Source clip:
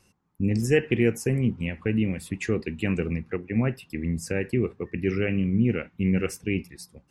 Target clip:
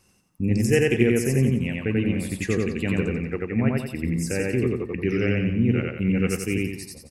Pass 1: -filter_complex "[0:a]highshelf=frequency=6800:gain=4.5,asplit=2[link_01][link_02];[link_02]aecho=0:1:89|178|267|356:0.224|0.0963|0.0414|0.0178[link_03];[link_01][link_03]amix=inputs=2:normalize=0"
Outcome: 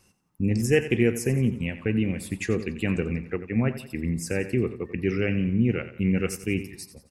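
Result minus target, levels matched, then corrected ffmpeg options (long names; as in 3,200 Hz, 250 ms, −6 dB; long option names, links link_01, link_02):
echo-to-direct −12 dB
-filter_complex "[0:a]highshelf=frequency=6800:gain=4.5,asplit=2[link_01][link_02];[link_02]aecho=0:1:89|178|267|356|445|534:0.891|0.383|0.165|0.0709|0.0305|0.0131[link_03];[link_01][link_03]amix=inputs=2:normalize=0"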